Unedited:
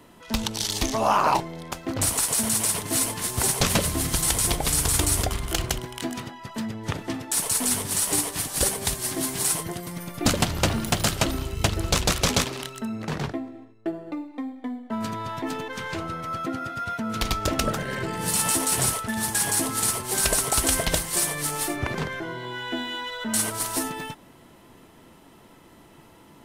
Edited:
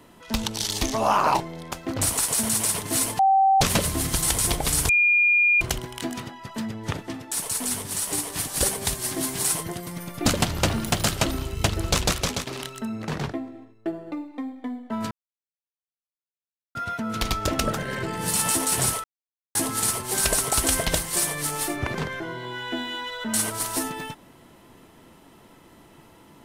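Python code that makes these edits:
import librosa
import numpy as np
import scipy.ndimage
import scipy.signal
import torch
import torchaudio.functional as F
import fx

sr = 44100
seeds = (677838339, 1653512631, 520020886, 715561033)

y = fx.edit(x, sr, fx.bleep(start_s=3.19, length_s=0.42, hz=775.0, db=-14.5),
    fx.bleep(start_s=4.89, length_s=0.72, hz=2420.0, db=-15.5),
    fx.clip_gain(start_s=7.01, length_s=1.29, db=-3.5),
    fx.fade_out_to(start_s=12.06, length_s=0.41, floor_db=-11.0),
    fx.silence(start_s=15.11, length_s=1.64),
    fx.silence(start_s=19.04, length_s=0.51), tone=tone)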